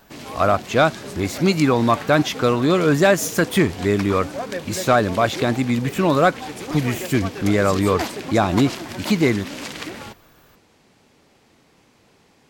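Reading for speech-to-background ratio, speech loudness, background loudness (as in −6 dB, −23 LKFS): 12.0 dB, −19.5 LKFS, −31.5 LKFS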